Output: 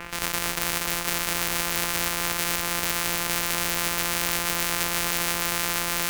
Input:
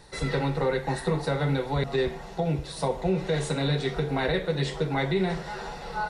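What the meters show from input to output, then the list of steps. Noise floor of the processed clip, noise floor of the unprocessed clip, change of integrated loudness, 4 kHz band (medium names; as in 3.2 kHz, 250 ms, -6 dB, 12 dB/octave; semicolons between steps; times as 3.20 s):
-30 dBFS, -41 dBFS, +3.5 dB, +9.0 dB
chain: sorted samples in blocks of 256 samples; high-order bell 1.6 kHz +15 dB; echo whose repeats swap between lows and highs 238 ms, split 1.1 kHz, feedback 84%, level -4 dB; spectrum-flattening compressor 4:1; trim -3 dB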